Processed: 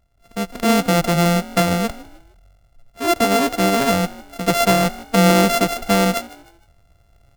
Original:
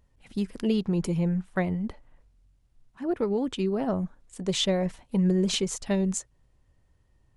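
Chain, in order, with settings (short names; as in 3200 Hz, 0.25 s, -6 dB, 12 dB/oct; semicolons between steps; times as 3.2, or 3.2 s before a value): sample sorter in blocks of 64 samples; frequency-shifting echo 0.154 s, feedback 35%, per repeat +50 Hz, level -19.5 dB; AGC gain up to 10 dB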